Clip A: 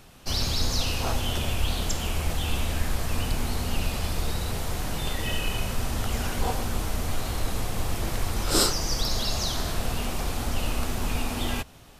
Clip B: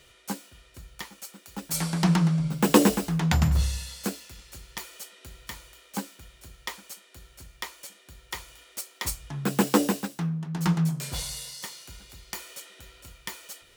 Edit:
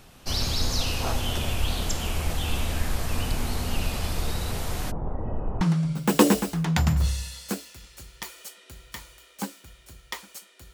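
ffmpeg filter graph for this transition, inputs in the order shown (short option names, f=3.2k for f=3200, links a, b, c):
-filter_complex "[0:a]asplit=3[a][b][c];[a]afade=t=out:st=4.9:d=0.02[d];[b]lowpass=f=1k:w=0.5412,lowpass=f=1k:w=1.3066,afade=t=in:st=4.9:d=0.02,afade=t=out:st=5.61:d=0.02[e];[c]afade=t=in:st=5.61:d=0.02[f];[d][e][f]amix=inputs=3:normalize=0,apad=whole_dur=10.73,atrim=end=10.73,atrim=end=5.612[g];[1:a]atrim=start=2.158:end=7.28[h];[g][h]acrossfade=d=0.004:c1=hsin:c2=hsin"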